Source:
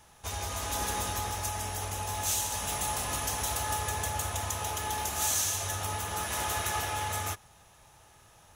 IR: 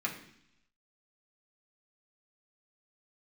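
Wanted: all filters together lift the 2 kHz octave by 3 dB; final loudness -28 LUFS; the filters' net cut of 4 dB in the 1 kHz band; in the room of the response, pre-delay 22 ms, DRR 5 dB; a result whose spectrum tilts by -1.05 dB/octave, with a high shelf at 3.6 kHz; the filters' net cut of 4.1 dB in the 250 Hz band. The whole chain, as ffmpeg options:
-filter_complex "[0:a]equalizer=f=250:t=o:g=-5.5,equalizer=f=1000:t=o:g=-6,equalizer=f=2000:t=o:g=4,highshelf=f=3600:g=5.5,asplit=2[s0][s1];[1:a]atrim=start_sample=2205,adelay=22[s2];[s1][s2]afir=irnorm=-1:irlink=0,volume=0.316[s3];[s0][s3]amix=inputs=2:normalize=0,volume=0.944"

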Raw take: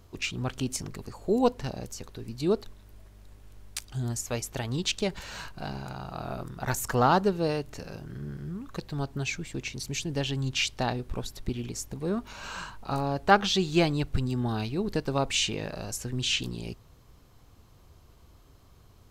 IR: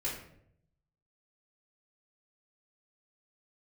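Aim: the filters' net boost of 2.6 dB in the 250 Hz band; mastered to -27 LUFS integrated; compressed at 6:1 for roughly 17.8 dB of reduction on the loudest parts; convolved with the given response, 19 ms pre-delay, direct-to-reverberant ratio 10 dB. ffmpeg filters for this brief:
-filter_complex "[0:a]equalizer=f=250:t=o:g=3.5,acompressor=threshold=0.0178:ratio=6,asplit=2[s0][s1];[1:a]atrim=start_sample=2205,adelay=19[s2];[s1][s2]afir=irnorm=-1:irlink=0,volume=0.211[s3];[s0][s3]amix=inputs=2:normalize=0,volume=3.98"

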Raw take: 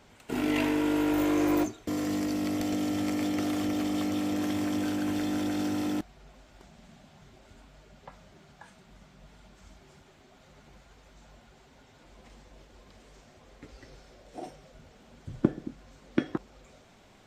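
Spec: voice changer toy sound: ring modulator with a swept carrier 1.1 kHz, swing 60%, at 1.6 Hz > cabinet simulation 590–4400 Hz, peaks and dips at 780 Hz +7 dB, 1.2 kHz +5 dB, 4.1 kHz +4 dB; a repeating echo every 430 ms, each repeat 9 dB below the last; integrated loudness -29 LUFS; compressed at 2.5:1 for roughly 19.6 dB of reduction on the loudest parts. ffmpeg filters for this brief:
-af "acompressor=threshold=0.00355:ratio=2.5,aecho=1:1:430|860|1290|1720:0.355|0.124|0.0435|0.0152,aeval=exprs='val(0)*sin(2*PI*1100*n/s+1100*0.6/1.6*sin(2*PI*1.6*n/s))':c=same,highpass=590,equalizer=f=780:t=q:w=4:g=7,equalizer=f=1200:t=q:w=4:g=5,equalizer=f=4100:t=q:w=4:g=4,lowpass=f=4400:w=0.5412,lowpass=f=4400:w=1.3066,volume=6.31"

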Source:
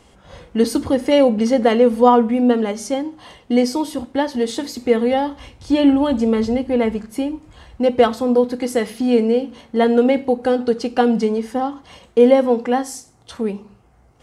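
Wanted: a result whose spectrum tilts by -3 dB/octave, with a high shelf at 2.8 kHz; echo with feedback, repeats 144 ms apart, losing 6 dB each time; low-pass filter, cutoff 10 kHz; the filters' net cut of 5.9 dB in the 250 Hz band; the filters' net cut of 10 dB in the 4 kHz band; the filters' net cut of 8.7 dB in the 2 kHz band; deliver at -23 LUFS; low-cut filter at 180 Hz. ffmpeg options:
-af "highpass=180,lowpass=10000,equalizer=f=250:t=o:g=-5,equalizer=f=2000:t=o:g=-7,highshelf=f=2800:g=-6.5,equalizer=f=4000:t=o:g=-5.5,aecho=1:1:144|288|432|576|720|864:0.501|0.251|0.125|0.0626|0.0313|0.0157,volume=0.668"

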